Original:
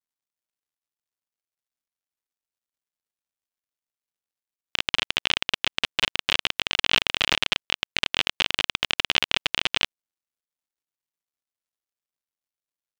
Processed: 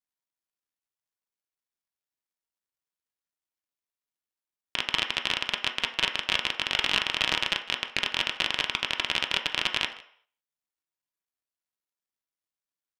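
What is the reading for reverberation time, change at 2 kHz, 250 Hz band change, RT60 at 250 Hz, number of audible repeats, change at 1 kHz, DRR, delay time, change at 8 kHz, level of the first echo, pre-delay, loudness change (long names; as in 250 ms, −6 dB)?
0.60 s, −2.5 dB, −2.5 dB, 0.45 s, 1, −1.0 dB, 3.5 dB, 156 ms, −3.5 dB, −21.0 dB, 3 ms, −3.0 dB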